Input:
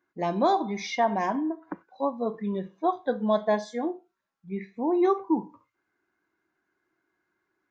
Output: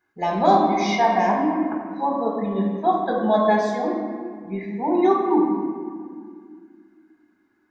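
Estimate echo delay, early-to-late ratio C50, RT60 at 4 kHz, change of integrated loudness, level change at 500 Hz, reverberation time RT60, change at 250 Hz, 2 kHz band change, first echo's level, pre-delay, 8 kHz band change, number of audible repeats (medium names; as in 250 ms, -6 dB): no echo, 2.5 dB, 1.2 s, +6.0 dB, +5.5 dB, 2.0 s, +6.5 dB, +7.5 dB, no echo, 5 ms, no reading, no echo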